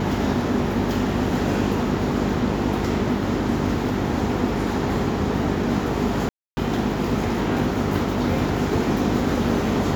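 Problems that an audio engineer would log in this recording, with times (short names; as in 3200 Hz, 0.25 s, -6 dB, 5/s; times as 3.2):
hum 50 Hz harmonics 8 -27 dBFS
6.29–6.57 gap 0.28 s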